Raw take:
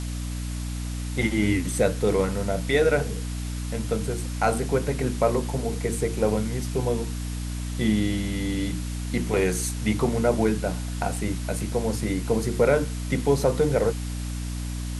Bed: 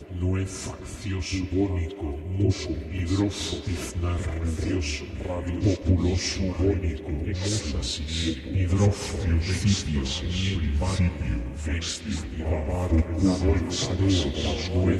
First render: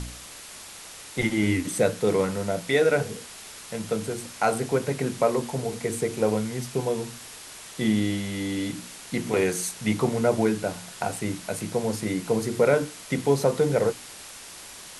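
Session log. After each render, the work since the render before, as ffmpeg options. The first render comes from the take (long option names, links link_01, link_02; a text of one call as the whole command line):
ffmpeg -i in.wav -af "bandreject=frequency=60:width_type=h:width=4,bandreject=frequency=120:width_type=h:width=4,bandreject=frequency=180:width_type=h:width=4,bandreject=frequency=240:width_type=h:width=4,bandreject=frequency=300:width_type=h:width=4" out.wav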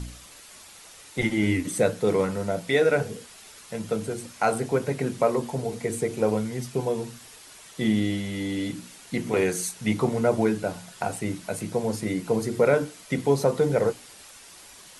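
ffmpeg -i in.wav -af "afftdn=noise_reduction=7:noise_floor=-43" out.wav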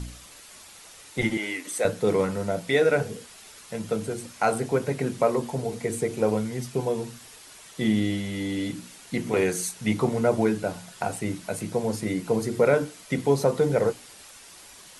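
ffmpeg -i in.wav -filter_complex "[0:a]asettb=1/sr,asplit=3[link_01][link_02][link_03];[link_01]atrim=end=1.374[link_04];[link_02]atrim=start=1.37:end=1.85,asetpts=PTS-STARTPTS,afade=type=in:duration=0.004:curve=qsin,afade=type=out:start_time=0.476:duration=0.004:curve=qsin,highpass=570[link_05];[link_03]atrim=start=1.846[link_06];[link_04][link_05]acrossfade=duration=0.004:curve1=hsin:curve2=qsin[link_07];[link_07][link_06]acrossfade=duration=0.004:curve1=qsin:curve2=hsin" out.wav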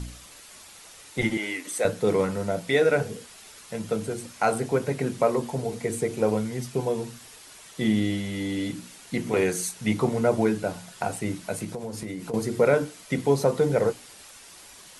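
ffmpeg -i in.wav -filter_complex "[0:a]asettb=1/sr,asplit=3[link_01][link_02][link_03];[link_01]atrim=end=11.644[link_04];[link_02]atrim=start=11.64:end=12.34,asetpts=PTS-STARTPTS,afade=type=in:duration=0.004:curve=qsin,afade=type=out:start_time=0.696:duration=0.004:curve=qsin,acompressor=threshold=-29dB:ratio=12:attack=3.2:release=140:knee=1:detection=peak[link_05];[link_03]atrim=start=12.336[link_06];[link_04][link_05]acrossfade=duration=0.004:curve1=hsin:curve2=qsin[link_07];[link_07][link_06]acrossfade=duration=0.004:curve1=qsin:curve2=hsin" out.wav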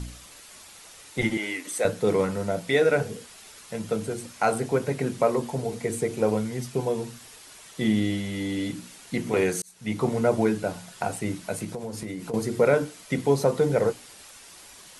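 ffmpeg -i in.wav -filter_complex "[0:a]asplit=2[link_01][link_02];[link_01]atrim=end=9.62,asetpts=PTS-STARTPTS,afade=type=out:start_time=9.616:duration=0.004:curve=hsin[link_03];[link_02]atrim=start=9.62,asetpts=PTS-STARTPTS,afade=type=in:duration=0.48[link_04];[link_03][link_04]concat=n=2:v=0:a=1" out.wav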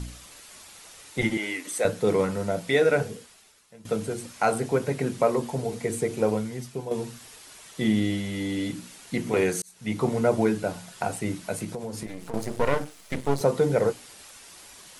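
ffmpeg -i in.wav -filter_complex "[0:a]asettb=1/sr,asplit=3[link_01][link_02][link_03];[link_01]atrim=end=12.064[link_04];[link_02]atrim=start=12.06:end=13.41,asetpts=PTS-STARTPTS,afade=type=in:duration=0.004:curve=qsin,afade=type=out:start_time=1.346:duration=0.004:curve=qsin,aeval=exprs='max(val(0),0)':channel_layout=same[link_05];[link_03]atrim=start=13.406[link_06];[link_04][link_05]acrossfade=duration=0.004:curve1=hsin:curve2=qsin[link_07];[link_07][link_06]acrossfade=duration=0.004:curve1=qsin:curve2=hsin,asplit=3[link_08][link_09][link_10];[link_08]atrim=end=3.85,asetpts=PTS-STARTPTS,afade=type=out:start_time=3.03:duration=0.82:curve=qua:silence=0.133352[link_11];[link_09]atrim=start=3.85:end=6.91,asetpts=PTS-STARTPTS,afade=type=in:duration=0.004:curve=hsin:silence=0.133352,afade=type=out:start_time=2.36:duration=0.7:silence=0.375837[link_12];[link_10]atrim=start=6.91,asetpts=PTS-STARTPTS,afade=type=in:duration=0.004:curve=hsin:silence=0.375837[link_13];[link_11][link_12][link_13]concat=n=3:v=0:a=1" out.wav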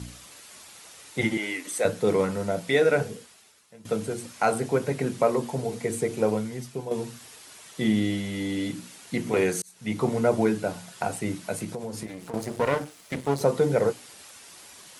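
ffmpeg -i in.wav -af "highpass=81" out.wav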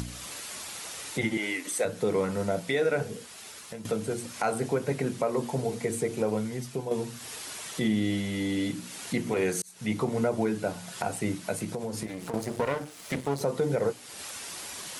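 ffmpeg -i in.wav -af "alimiter=limit=-17dB:level=0:latency=1:release=203,acompressor=mode=upward:threshold=-30dB:ratio=2.5" out.wav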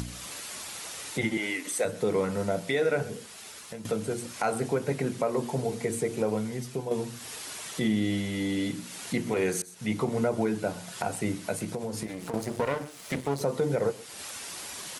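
ffmpeg -i in.wav -af "aecho=1:1:128:0.0944" out.wav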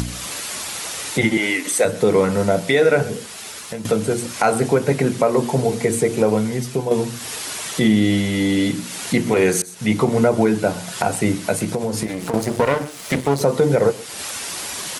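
ffmpeg -i in.wav -af "volume=11dB" out.wav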